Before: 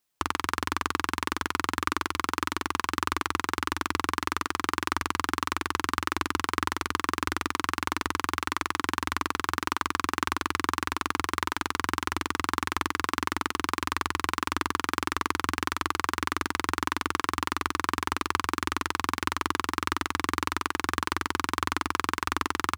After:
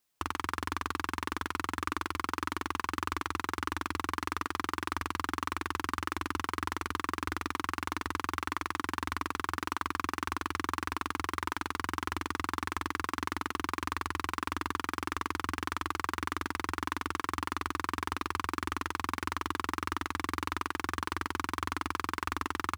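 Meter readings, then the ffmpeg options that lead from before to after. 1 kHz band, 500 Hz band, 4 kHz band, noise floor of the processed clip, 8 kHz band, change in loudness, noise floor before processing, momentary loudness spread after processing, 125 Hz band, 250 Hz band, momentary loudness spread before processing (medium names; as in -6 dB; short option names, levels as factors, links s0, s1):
-5.0 dB, -5.5 dB, -7.5 dB, -60 dBFS, -8.0 dB, -5.5 dB, -60 dBFS, 1 LU, -3.0 dB, -5.0 dB, 1 LU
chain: -filter_complex "[0:a]acrossover=split=2300[s0][s1];[s0]alimiter=limit=0.133:level=0:latency=1:release=18[s2];[s1]volume=42.2,asoftclip=hard,volume=0.0237[s3];[s2][s3]amix=inputs=2:normalize=0"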